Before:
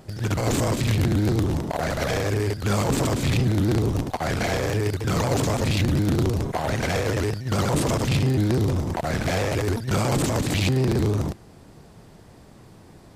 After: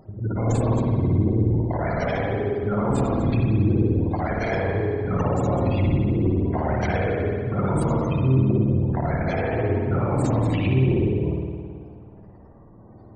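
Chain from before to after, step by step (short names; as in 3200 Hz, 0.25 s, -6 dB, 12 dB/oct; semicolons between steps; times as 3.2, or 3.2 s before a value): spectral gate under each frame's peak -20 dB strong; spring tank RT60 1.9 s, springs 53 ms, chirp 40 ms, DRR -1.5 dB; gain -2.5 dB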